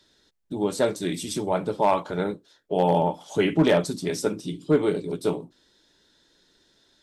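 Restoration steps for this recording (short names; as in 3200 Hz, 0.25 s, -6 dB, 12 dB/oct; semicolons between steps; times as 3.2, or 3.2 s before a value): clip repair -11 dBFS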